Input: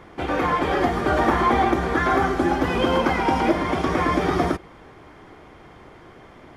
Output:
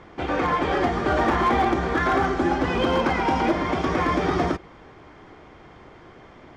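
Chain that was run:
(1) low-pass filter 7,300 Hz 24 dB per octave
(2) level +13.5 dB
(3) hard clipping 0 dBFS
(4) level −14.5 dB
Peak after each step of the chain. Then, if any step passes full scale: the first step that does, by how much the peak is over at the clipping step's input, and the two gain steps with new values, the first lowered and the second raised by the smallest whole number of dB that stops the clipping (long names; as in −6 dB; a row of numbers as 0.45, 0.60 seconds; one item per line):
−7.0, +6.5, 0.0, −14.5 dBFS
step 2, 6.5 dB
step 2 +6.5 dB, step 4 −7.5 dB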